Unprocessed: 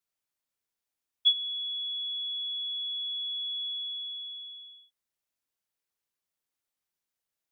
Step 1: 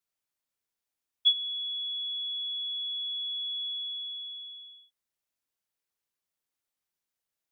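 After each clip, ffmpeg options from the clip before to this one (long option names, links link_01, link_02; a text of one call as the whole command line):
ffmpeg -i in.wav -af anull out.wav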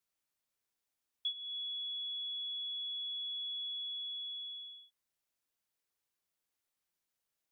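ffmpeg -i in.wav -af "acompressor=threshold=-41dB:ratio=3" out.wav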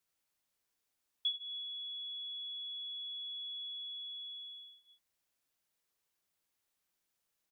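ffmpeg -i in.wav -af "aecho=1:1:83:0.473,volume=2.5dB" out.wav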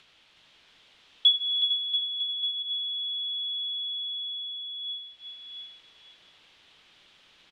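ffmpeg -i in.wav -af "acompressor=mode=upward:threshold=-49dB:ratio=2.5,lowpass=frequency=3300:width_type=q:width=3,aecho=1:1:370|684.5|951.8|1179|1372:0.631|0.398|0.251|0.158|0.1,volume=6dB" out.wav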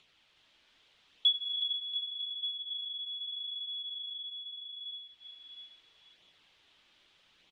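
ffmpeg -i in.wav -af "flanger=delay=0.3:depth=3.2:regen=-48:speed=0.8:shape=sinusoidal,volume=-3.5dB" out.wav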